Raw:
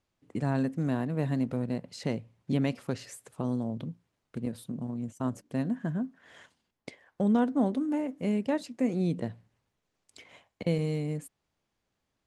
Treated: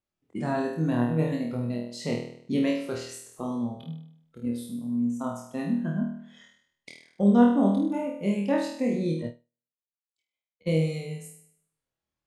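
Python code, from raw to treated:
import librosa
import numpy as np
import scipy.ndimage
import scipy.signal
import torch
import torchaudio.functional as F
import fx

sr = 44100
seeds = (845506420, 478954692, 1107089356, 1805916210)

y = fx.noise_reduce_blind(x, sr, reduce_db=13)
y = fx.room_flutter(y, sr, wall_m=4.3, rt60_s=0.65)
y = fx.upward_expand(y, sr, threshold_db=-52.0, expansion=2.5, at=(9.22, 10.68))
y = F.gain(torch.from_numpy(y), 1.0).numpy()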